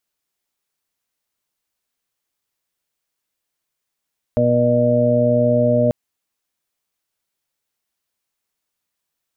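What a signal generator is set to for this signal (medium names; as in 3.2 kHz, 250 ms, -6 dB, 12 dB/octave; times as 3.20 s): steady additive tone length 1.54 s, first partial 121 Hz, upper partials 1/-16/-1/4.5 dB, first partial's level -20 dB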